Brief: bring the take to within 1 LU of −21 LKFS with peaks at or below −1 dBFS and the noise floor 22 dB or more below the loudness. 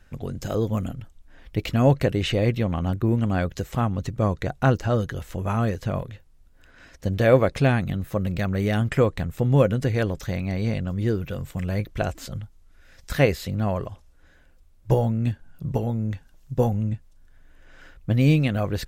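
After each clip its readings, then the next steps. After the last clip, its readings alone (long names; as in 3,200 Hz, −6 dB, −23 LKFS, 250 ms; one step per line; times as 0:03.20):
integrated loudness −24.5 LKFS; sample peak −3.5 dBFS; target loudness −21.0 LKFS
→ level +3.5 dB
brickwall limiter −1 dBFS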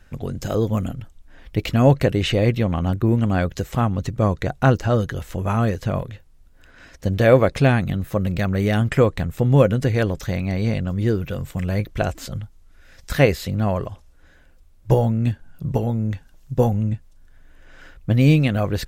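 integrated loudness −21.0 LKFS; sample peak −1.0 dBFS; background noise floor −51 dBFS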